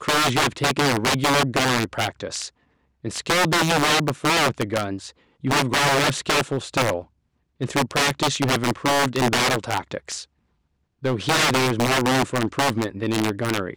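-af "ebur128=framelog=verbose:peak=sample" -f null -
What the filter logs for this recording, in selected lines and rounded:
Integrated loudness:
  I:         -21.2 LUFS
  Threshold: -31.6 LUFS
Loudness range:
  LRA:         2.1 LU
  Threshold: -42.0 LUFS
  LRA low:   -22.9 LUFS
  LRA high:  -20.7 LUFS
Sample peak:
  Peak:       -8.7 dBFS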